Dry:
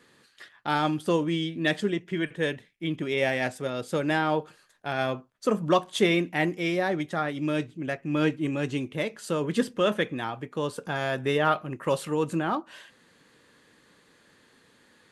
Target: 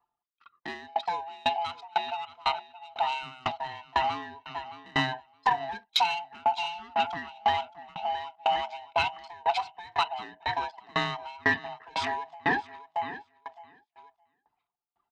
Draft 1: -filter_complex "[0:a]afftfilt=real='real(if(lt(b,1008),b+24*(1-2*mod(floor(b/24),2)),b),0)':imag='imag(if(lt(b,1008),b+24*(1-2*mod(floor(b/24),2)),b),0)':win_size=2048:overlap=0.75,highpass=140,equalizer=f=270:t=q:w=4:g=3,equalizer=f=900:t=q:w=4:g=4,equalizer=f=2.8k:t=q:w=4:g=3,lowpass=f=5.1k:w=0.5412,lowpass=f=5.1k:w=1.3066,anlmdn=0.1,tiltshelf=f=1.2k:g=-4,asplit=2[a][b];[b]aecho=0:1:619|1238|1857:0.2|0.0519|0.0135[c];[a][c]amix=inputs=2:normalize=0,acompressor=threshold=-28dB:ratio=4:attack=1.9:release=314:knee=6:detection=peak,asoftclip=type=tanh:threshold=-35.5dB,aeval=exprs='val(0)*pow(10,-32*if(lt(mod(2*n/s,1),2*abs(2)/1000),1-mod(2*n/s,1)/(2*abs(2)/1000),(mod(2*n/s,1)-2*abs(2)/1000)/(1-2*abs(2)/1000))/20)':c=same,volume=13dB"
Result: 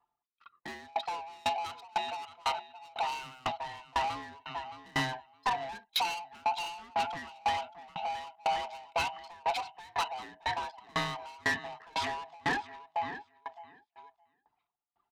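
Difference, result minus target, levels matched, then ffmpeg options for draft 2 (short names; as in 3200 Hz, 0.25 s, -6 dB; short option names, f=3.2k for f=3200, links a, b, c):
soft clip: distortion +13 dB
-filter_complex "[0:a]afftfilt=real='real(if(lt(b,1008),b+24*(1-2*mod(floor(b/24),2)),b),0)':imag='imag(if(lt(b,1008),b+24*(1-2*mod(floor(b/24),2)),b),0)':win_size=2048:overlap=0.75,highpass=140,equalizer=f=270:t=q:w=4:g=3,equalizer=f=900:t=q:w=4:g=4,equalizer=f=2.8k:t=q:w=4:g=3,lowpass=f=5.1k:w=0.5412,lowpass=f=5.1k:w=1.3066,anlmdn=0.1,tiltshelf=f=1.2k:g=-4,asplit=2[a][b];[b]aecho=0:1:619|1238|1857:0.2|0.0519|0.0135[c];[a][c]amix=inputs=2:normalize=0,acompressor=threshold=-28dB:ratio=4:attack=1.9:release=314:knee=6:detection=peak,asoftclip=type=tanh:threshold=-23.5dB,aeval=exprs='val(0)*pow(10,-32*if(lt(mod(2*n/s,1),2*abs(2)/1000),1-mod(2*n/s,1)/(2*abs(2)/1000),(mod(2*n/s,1)-2*abs(2)/1000)/(1-2*abs(2)/1000))/20)':c=same,volume=13dB"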